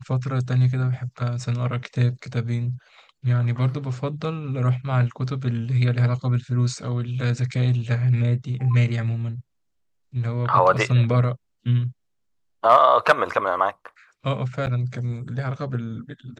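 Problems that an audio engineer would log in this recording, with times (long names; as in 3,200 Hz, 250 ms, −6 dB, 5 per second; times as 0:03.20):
0:14.66–0:14.67: drop-out 9.2 ms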